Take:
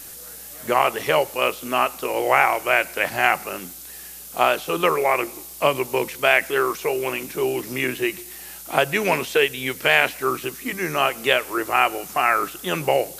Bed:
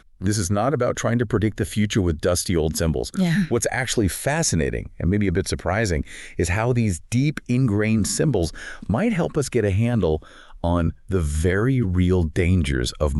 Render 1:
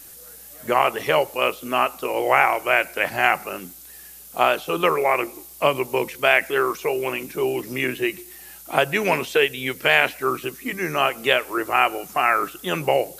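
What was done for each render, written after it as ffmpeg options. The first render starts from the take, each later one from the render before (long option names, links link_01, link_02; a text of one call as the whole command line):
ffmpeg -i in.wav -af "afftdn=noise_reduction=6:noise_floor=-39" out.wav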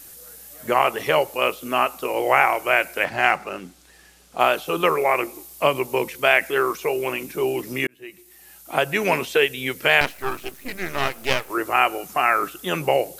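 ffmpeg -i in.wav -filter_complex "[0:a]asettb=1/sr,asplit=3[link_01][link_02][link_03];[link_01]atrim=end=3.044[link_04];[link_02]atrim=start=3.04:end=4.4,asetpts=PTS-STARTPTS,afade=type=in:duration=0.004:curve=qsin,afade=type=out:start_time=1.356:duration=0.004:curve=qsin,adynamicsmooth=sensitivity=5:basefreq=5400[link_05];[link_03]atrim=start=4.396[link_06];[link_04][link_05]acrossfade=duration=0.004:curve1=hsin:curve2=qsin[link_07];[link_07][link_06]acrossfade=duration=0.004:curve1=qsin:curve2=hsin,asettb=1/sr,asplit=3[link_08][link_09][link_10];[link_08]atrim=end=10.014[link_11];[link_09]atrim=start=10.01:end=11.5,asetpts=PTS-STARTPTS,afade=type=in:duration=0.004:curve=qsin,afade=type=out:start_time=1.486:duration=0.004:curve=qsin,aeval=exprs='max(val(0),0)':channel_layout=same[link_12];[link_10]atrim=start=11.496[link_13];[link_11][link_12]acrossfade=duration=0.004:curve1=hsin:curve2=qsin[link_14];[link_14][link_13]acrossfade=duration=0.004:curve1=qsin:curve2=hsin,asplit=2[link_15][link_16];[link_15]atrim=end=7.87,asetpts=PTS-STARTPTS,afade=type=out:start_time=7.866:duration=0.004:curve=hsin[link_17];[link_16]atrim=start=7.87,asetpts=PTS-STARTPTS,afade=type=in:duration=1.15[link_18];[link_17][link_18]concat=n=2:v=0:a=1" out.wav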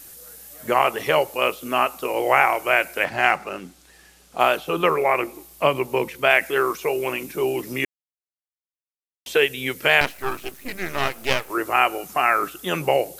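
ffmpeg -i in.wav -filter_complex "[0:a]asettb=1/sr,asplit=3[link_01][link_02][link_03];[link_01]atrim=end=4.574[link_04];[link_02]atrim=start=4.57:end=6.3,asetpts=PTS-STARTPTS,afade=type=in:duration=0.004:curve=qsin,afade=type=out:start_time=1.726:duration=0.004:curve=qsin,bass=frequency=250:gain=2,treble=frequency=4000:gain=-5[link_05];[link_03]atrim=start=6.296[link_06];[link_04][link_05]acrossfade=duration=0.004:curve1=hsin:curve2=qsin[link_07];[link_07][link_06]acrossfade=duration=0.004:curve1=qsin:curve2=hsin,asplit=3[link_08][link_09][link_10];[link_08]atrim=end=7.85,asetpts=PTS-STARTPTS,afade=type=out:start_time=7.846:duration=0.004:curve=hsin[link_11];[link_09]atrim=start=7.85:end=9.26,asetpts=PTS-STARTPTS,volume=0[link_12];[link_10]atrim=start=9.26,asetpts=PTS-STARTPTS,afade=type=in:duration=0.004:curve=hsin[link_13];[link_11][link_12][link_13]concat=n=3:v=0:a=1" out.wav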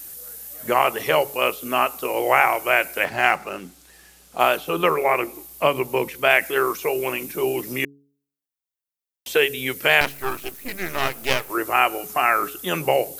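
ffmpeg -i in.wav -af "highshelf=frequency=11000:gain=9.5,bandreject=frequency=140.7:width_type=h:width=4,bandreject=frequency=281.4:width_type=h:width=4,bandreject=frequency=422.1:width_type=h:width=4" out.wav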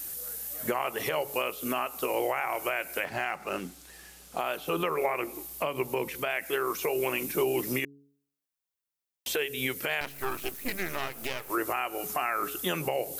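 ffmpeg -i in.wav -af "acompressor=threshold=-22dB:ratio=2.5,alimiter=limit=-17.5dB:level=0:latency=1:release=257" out.wav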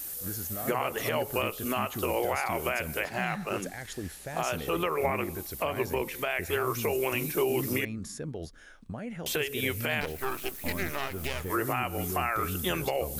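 ffmpeg -i in.wav -i bed.wav -filter_complex "[1:a]volume=-17.5dB[link_01];[0:a][link_01]amix=inputs=2:normalize=0" out.wav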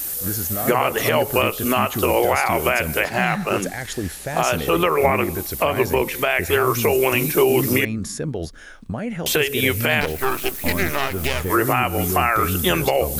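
ffmpeg -i in.wav -af "volume=11dB" out.wav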